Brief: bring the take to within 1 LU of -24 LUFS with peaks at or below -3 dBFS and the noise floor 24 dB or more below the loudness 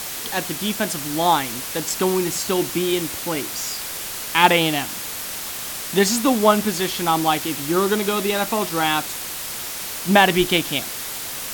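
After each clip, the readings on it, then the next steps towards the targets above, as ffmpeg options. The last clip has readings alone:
noise floor -30 dBFS; noise floor target -45 dBFS; loudness -21.0 LUFS; peak -1.0 dBFS; loudness target -24.0 LUFS
-> -af "afftdn=nr=15:nf=-30"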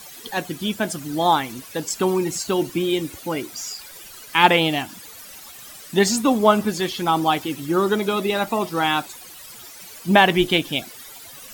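noise floor -41 dBFS; noise floor target -45 dBFS
-> -af "afftdn=nr=6:nf=-41"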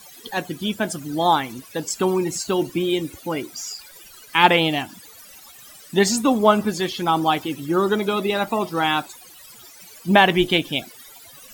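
noise floor -45 dBFS; loudness -21.0 LUFS; peak -1.0 dBFS; loudness target -24.0 LUFS
-> -af "volume=-3dB"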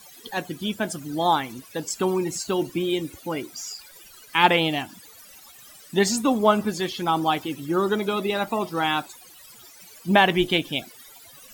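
loudness -24.0 LUFS; peak -4.0 dBFS; noise floor -48 dBFS

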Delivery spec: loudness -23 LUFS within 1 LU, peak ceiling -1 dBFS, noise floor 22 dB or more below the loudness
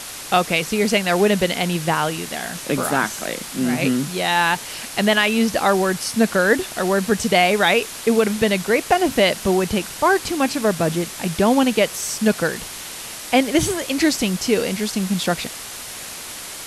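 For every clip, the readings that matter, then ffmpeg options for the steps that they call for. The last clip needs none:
noise floor -34 dBFS; noise floor target -42 dBFS; loudness -19.5 LUFS; peak -4.0 dBFS; loudness target -23.0 LUFS
-> -af "afftdn=nr=8:nf=-34"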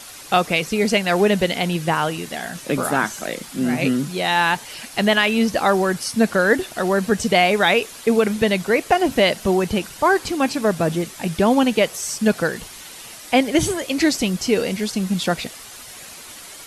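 noise floor -39 dBFS; noise floor target -42 dBFS
-> -af "afftdn=nr=6:nf=-39"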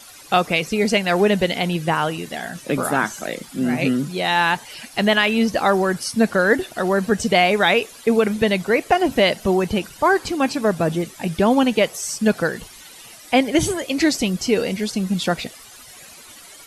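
noise floor -43 dBFS; loudness -19.5 LUFS; peak -4.5 dBFS; loudness target -23.0 LUFS
-> -af "volume=-3.5dB"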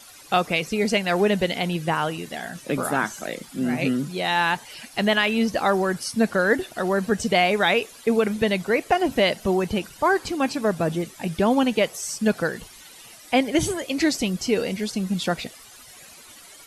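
loudness -23.0 LUFS; peak -8.0 dBFS; noise floor -46 dBFS

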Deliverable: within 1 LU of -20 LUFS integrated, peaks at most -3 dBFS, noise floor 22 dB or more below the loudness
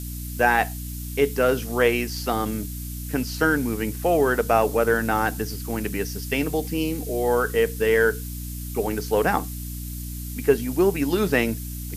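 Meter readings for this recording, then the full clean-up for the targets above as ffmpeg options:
hum 60 Hz; harmonics up to 300 Hz; hum level -31 dBFS; noise floor -33 dBFS; noise floor target -46 dBFS; loudness -23.5 LUFS; peak -5.0 dBFS; loudness target -20.0 LUFS
-> -af "bandreject=f=60:t=h:w=6,bandreject=f=120:t=h:w=6,bandreject=f=180:t=h:w=6,bandreject=f=240:t=h:w=6,bandreject=f=300:t=h:w=6"
-af "afftdn=nr=13:nf=-33"
-af "volume=3.5dB,alimiter=limit=-3dB:level=0:latency=1"

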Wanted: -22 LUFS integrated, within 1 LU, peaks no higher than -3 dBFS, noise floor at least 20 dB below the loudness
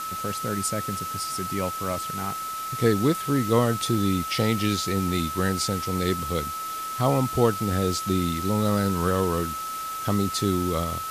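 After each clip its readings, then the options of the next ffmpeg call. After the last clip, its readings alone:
steady tone 1300 Hz; tone level -30 dBFS; noise floor -32 dBFS; noise floor target -46 dBFS; loudness -25.5 LUFS; peak -7.0 dBFS; loudness target -22.0 LUFS
-> -af "bandreject=f=1.3k:w=30"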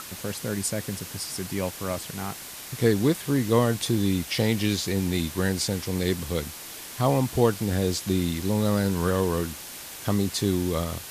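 steady tone none; noise floor -40 dBFS; noise floor target -46 dBFS
-> -af "afftdn=nr=6:nf=-40"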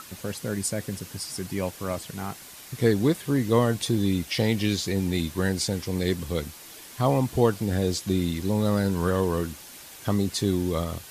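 noise floor -45 dBFS; noise floor target -47 dBFS
-> -af "afftdn=nr=6:nf=-45"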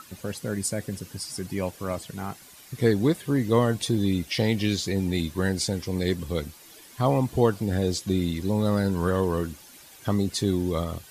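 noise floor -50 dBFS; loudness -26.5 LUFS; peak -8.0 dBFS; loudness target -22.0 LUFS
-> -af "volume=4.5dB"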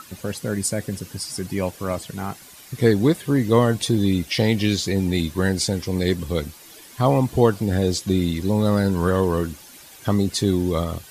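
loudness -22.0 LUFS; peak -3.5 dBFS; noise floor -45 dBFS

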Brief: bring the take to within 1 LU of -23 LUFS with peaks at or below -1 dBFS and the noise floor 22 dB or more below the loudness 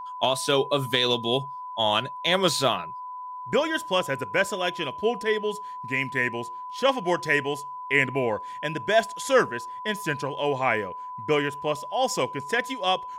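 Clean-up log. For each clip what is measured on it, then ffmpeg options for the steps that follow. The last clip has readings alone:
steady tone 1000 Hz; tone level -34 dBFS; loudness -25.5 LUFS; peak -6.5 dBFS; loudness target -23.0 LUFS
-> -af "bandreject=f=1k:w=30"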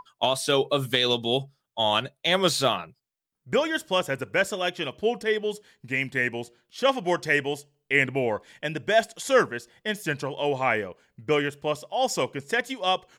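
steady tone none; loudness -25.5 LUFS; peak -7.0 dBFS; loudness target -23.0 LUFS
-> -af "volume=2.5dB"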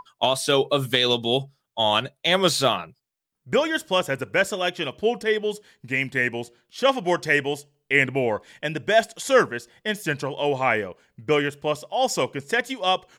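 loudness -23.0 LUFS; peak -4.5 dBFS; noise floor -78 dBFS

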